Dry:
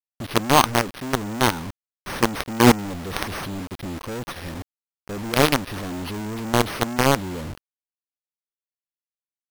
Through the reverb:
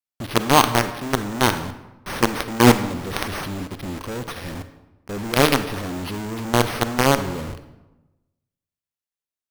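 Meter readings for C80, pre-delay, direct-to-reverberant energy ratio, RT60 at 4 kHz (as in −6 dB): 13.5 dB, 34 ms, 10.0 dB, 0.70 s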